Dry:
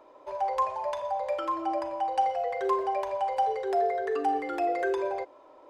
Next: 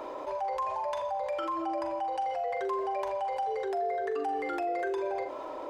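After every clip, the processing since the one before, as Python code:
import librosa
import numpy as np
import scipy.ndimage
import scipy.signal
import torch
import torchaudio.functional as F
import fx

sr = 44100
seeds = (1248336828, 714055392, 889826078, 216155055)

y = fx.doubler(x, sr, ms=43.0, db=-11)
y = fx.env_flatten(y, sr, amount_pct=70)
y = y * librosa.db_to_amplitude(-8.0)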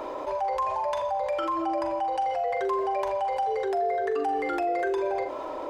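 y = fx.low_shelf(x, sr, hz=100.0, db=5.5)
y = y * librosa.db_to_amplitude(4.5)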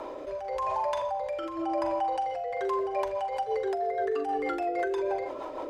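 y = fx.rotary_switch(x, sr, hz=0.9, then_hz=6.3, switch_at_s=2.38)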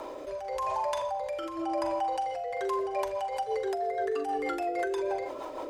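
y = fx.high_shelf(x, sr, hz=5600.0, db=12.0)
y = y * librosa.db_to_amplitude(-1.5)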